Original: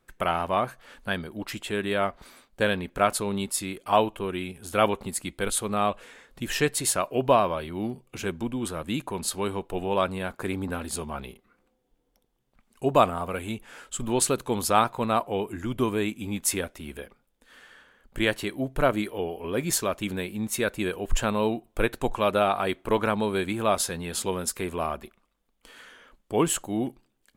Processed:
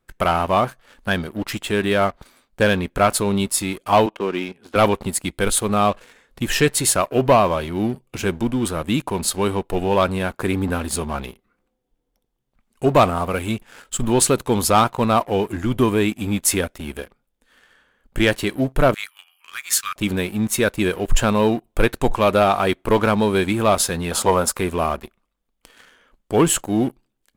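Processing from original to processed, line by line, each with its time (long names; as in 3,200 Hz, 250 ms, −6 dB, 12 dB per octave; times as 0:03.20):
0:04.06–0:04.76: three-way crossover with the lows and the highs turned down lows −23 dB, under 180 Hz, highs −22 dB, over 4,200 Hz
0:18.94–0:19.96: Chebyshev high-pass filter 1,200 Hz, order 5
0:24.11–0:24.59: flat-topped bell 850 Hz +10 dB
whole clip: low-shelf EQ 160 Hz +4 dB; leveller curve on the samples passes 2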